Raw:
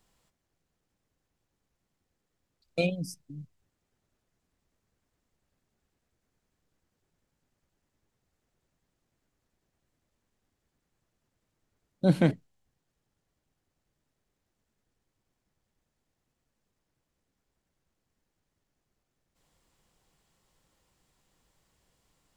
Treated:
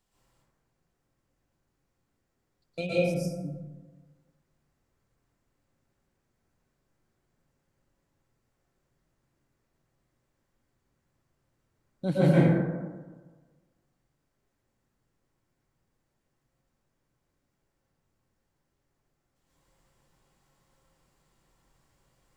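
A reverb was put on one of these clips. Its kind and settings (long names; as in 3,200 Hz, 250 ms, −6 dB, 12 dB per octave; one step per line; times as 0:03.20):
dense smooth reverb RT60 1.4 s, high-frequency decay 0.35×, pre-delay 105 ms, DRR −9.5 dB
level −7 dB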